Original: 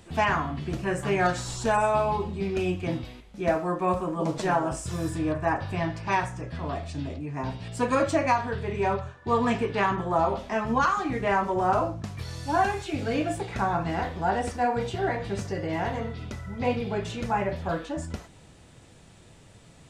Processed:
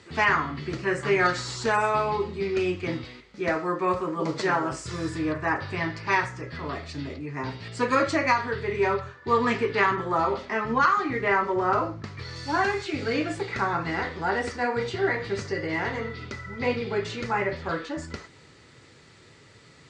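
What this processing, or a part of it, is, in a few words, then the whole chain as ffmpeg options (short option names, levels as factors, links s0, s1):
car door speaker: -filter_complex "[0:a]highpass=99,equalizer=f=190:t=q:w=4:g=-6,equalizer=f=410:t=q:w=4:g=5,equalizer=f=700:t=q:w=4:g=-7,equalizer=f=1300:t=q:w=4:g=6,equalizer=f=2000:t=q:w=4:g=9,equalizer=f=4500:t=q:w=4:g=8,lowpass=f=7700:w=0.5412,lowpass=f=7700:w=1.3066,asettb=1/sr,asplit=3[s0][s1][s2];[s0]atrim=end=10.454[s3];[s1]atrim=start=10.45:end=12.36,asetpts=PTS-STARTPTS,afade=t=in:d=0.004:c=qsin,afade=t=out:st=1.906:d=0.004:c=qsin,highshelf=f=5700:g=-9.5[s4];[s2]atrim=start=12.356[s5];[s3][s4]acrossfade=d=0.004:c1=hsin:c2=qsin[s6];[s6][s5]acrossfade=d=0.004:c1=qsin:c2=hsin"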